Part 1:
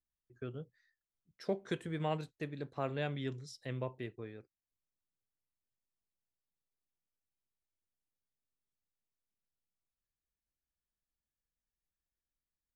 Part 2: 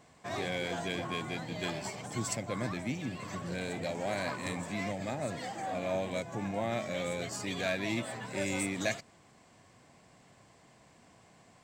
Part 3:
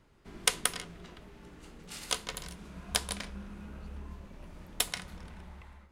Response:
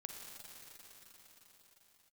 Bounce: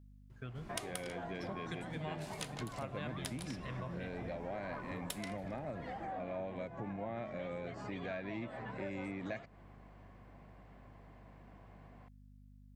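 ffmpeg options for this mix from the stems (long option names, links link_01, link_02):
-filter_complex "[0:a]equalizer=frequency=370:width_type=o:width=1.1:gain=-12.5,aeval=exprs='val(0)+0.001*(sin(2*PI*50*n/s)+sin(2*PI*2*50*n/s)/2+sin(2*PI*3*50*n/s)/3+sin(2*PI*4*50*n/s)/4+sin(2*PI*5*50*n/s)/5)':channel_layout=same,volume=1.5dB,asplit=2[link_01][link_02];[link_02]volume=-6dB[link_03];[1:a]lowpass=1900,adelay=450,volume=1dB[link_04];[2:a]adelay=300,volume=-5dB[link_05];[3:a]atrim=start_sample=2205[link_06];[link_03][link_06]afir=irnorm=-1:irlink=0[link_07];[link_01][link_04][link_05][link_07]amix=inputs=4:normalize=0,acompressor=threshold=-41dB:ratio=3"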